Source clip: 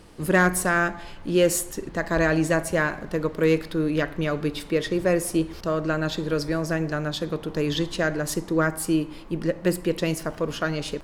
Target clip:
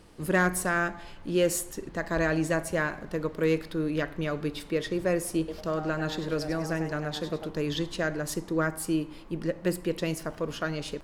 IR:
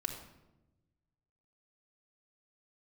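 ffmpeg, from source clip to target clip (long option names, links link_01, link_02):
-filter_complex "[0:a]asettb=1/sr,asplit=3[link_01][link_02][link_03];[link_01]atrim=end=5.384[link_04];[link_02]atrim=start=5.38:end=7.5,asetpts=PTS-STARTPTS,afade=type=in:duration=0.004:curve=qsin,afade=type=out:start_time=2.116:duration=0.004:curve=qsin,asplit=5[link_05][link_06][link_07][link_08][link_09];[link_06]adelay=99,afreqshift=150,volume=-10dB[link_10];[link_07]adelay=198,afreqshift=300,volume=-18dB[link_11];[link_08]adelay=297,afreqshift=450,volume=-25.9dB[link_12];[link_09]adelay=396,afreqshift=600,volume=-33.9dB[link_13];[link_05][link_10][link_11][link_12][link_13]amix=inputs=5:normalize=0,atrim=end_sample=93492[link_14];[link_03]atrim=start=7.496[link_15];[link_04][link_14]acrossfade=duration=0.004:curve1=hsin:curve2=qsin[link_16];[link_16][link_15]acrossfade=duration=0.004:curve1=qsin:curve2=hsin,volume=-5dB"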